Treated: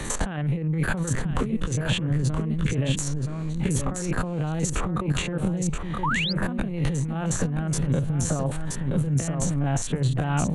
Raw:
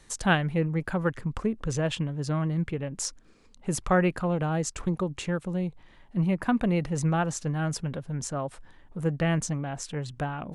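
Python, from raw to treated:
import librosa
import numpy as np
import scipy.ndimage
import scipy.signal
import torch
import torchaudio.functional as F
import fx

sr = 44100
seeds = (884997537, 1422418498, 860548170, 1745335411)

p1 = fx.spec_steps(x, sr, hold_ms=50)
p2 = fx.over_compress(p1, sr, threshold_db=-36.0, ratio=-1.0)
p3 = fx.peak_eq(p2, sr, hz=5100.0, db=-14.0, octaves=0.21)
p4 = p3 + fx.echo_single(p3, sr, ms=974, db=-7.0, dry=0)
p5 = fx.spec_paint(p4, sr, seeds[0], shape='rise', start_s=6.03, length_s=0.3, low_hz=850.0, high_hz=5100.0, level_db=-32.0)
p6 = fx.low_shelf(p5, sr, hz=390.0, db=6.0)
p7 = fx.band_squash(p6, sr, depth_pct=70)
y = p7 * 10.0 ** (5.0 / 20.0)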